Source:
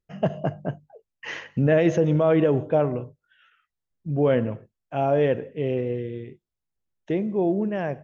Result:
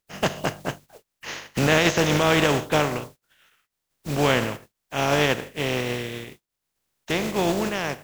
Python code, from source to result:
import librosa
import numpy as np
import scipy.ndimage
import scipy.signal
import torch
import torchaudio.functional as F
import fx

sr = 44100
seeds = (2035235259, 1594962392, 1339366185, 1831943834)

y = fx.spec_flatten(x, sr, power=0.41)